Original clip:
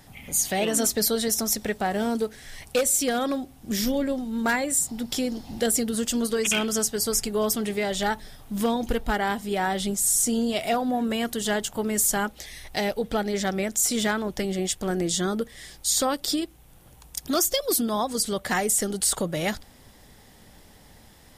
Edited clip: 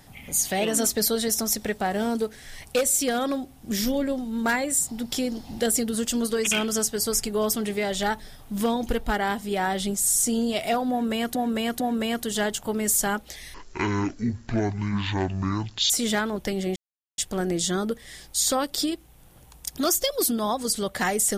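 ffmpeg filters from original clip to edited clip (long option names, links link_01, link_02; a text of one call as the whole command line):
ffmpeg -i in.wav -filter_complex "[0:a]asplit=6[link_01][link_02][link_03][link_04][link_05][link_06];[link_01]atrim=end=11.352[link_07];[link_02]atrim=start=10.898:end=11.352[link_08];[link_03]atrim=start=10.898:end=12.644[link_09];[link_04]atrim=start=12.64:end=13.82,asetpts=PTS-STARTPTS,asetrate=22050,aresample=44100[link_10];[link_05]atrim=start=13.816:end=14.68,asetpts=PTS-STARTPTS,afade=type=out:start_time=0.86:duration=0.004:curve=hsin,apad=pad_dur=0.42[link_11];[link_06]atrim=start=14.68,asetpts=PTS-STARTPTS,afade=type=in:duration=0.004:curve=hsin[link_12];[link_07][link_08]acrossfade=duration=0.004:curve1=hsin:curve2=hsin[link_13];[link_13][link_09]acrossfade=duration=0.004:curve1=hsin:curve2=hsin[link_14];[link_14][link_10]acrossfade=duration=0.004:curve1=hsin:curve2=hsin[link_15];[link_11][link_12]concat=n=2:v=0:a=1[link_16];[link_15][link_16]acrossfade=duration=0.004:curve1=hsin:curve2=hsin" out.wav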